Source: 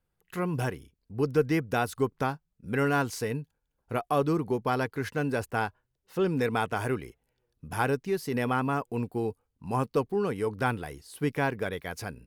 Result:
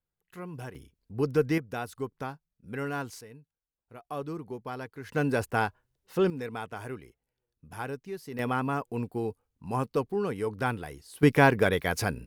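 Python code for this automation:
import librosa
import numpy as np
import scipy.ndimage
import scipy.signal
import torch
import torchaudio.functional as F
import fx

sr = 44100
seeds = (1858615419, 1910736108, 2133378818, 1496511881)

y = fx.gain(x, sr, db=fx.steps((0.0, -10.5), (0.75, -0.5), (1.58, -7.5), (3.21, -17.5), (4.05, -10.0), (5.09, 2.0), (6.3, -9.0), (8.39, -1.5), (11.23, 8.0)))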